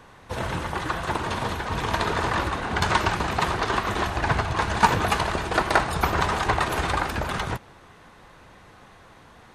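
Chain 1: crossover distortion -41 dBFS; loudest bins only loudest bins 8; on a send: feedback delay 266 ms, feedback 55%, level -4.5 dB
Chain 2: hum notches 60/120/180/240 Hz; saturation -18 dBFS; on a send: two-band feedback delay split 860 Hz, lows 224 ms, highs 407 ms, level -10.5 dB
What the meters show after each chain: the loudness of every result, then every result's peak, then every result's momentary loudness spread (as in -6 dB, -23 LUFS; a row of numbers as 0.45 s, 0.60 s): -29.5 LUFS, -26.5 LUFS; -7.5 dBFS, -15.0 dBFS; 10 LU, 11 LU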